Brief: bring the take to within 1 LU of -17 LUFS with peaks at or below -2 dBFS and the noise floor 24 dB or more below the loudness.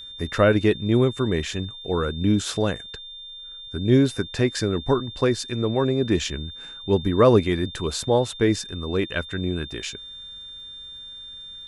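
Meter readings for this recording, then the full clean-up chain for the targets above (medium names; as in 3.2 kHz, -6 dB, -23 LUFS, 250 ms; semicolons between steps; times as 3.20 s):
tick rate 33 per s; steady tone 3.6 kHz; tone level -37 dBFS; loudness -23.0 LUFS; peak level -5.0 dBFS; loudness target -17.0 LUFS
-> de-click; band-stop 3.6 kHz, Q 30; trim +6 dB; peak limiter -2 dBFS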